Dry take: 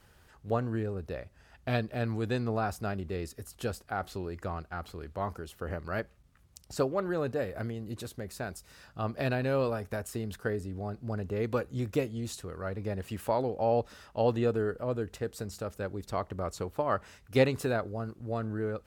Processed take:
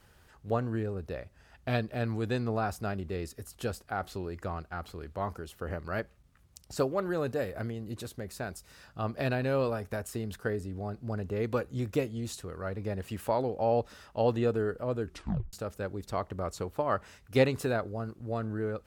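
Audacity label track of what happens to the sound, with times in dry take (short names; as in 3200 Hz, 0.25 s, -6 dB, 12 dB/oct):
6.770000	7.500000	high shelf 8500 Hz -> 4800 Hz +6.5 dB
15.030000	15.030000	tape stop 0.50 s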